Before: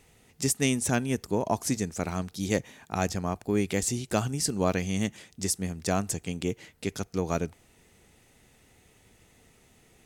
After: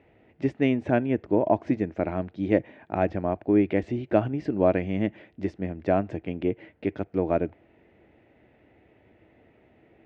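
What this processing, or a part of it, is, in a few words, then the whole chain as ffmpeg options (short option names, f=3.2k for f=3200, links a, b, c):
bass cabinet: -af "highpass=67,equalizer=f=160:t=q:w=4:g=-4,equalizer=f=320:t=q:w=4:g=10,equalizer=f=610:t=q:w=4:g=9,equalizer=f=1.2k:t=q:w=4:g=-6,lowpass=f=2.4k:w=0.5412,lowpass=f=2.4k:w=1.3066,volume=1dB"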